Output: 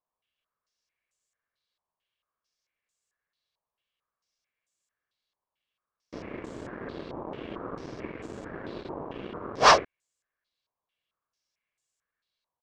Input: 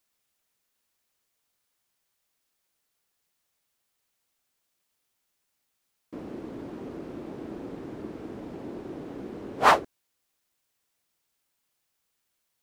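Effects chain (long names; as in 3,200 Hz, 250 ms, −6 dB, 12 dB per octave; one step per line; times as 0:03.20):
comb filter 1.8 ms, depth 33%
leveller curve on the samples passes 2
low-pass on a step sequencer 4.5 Hz 930–7,400 Hz
level −5 dB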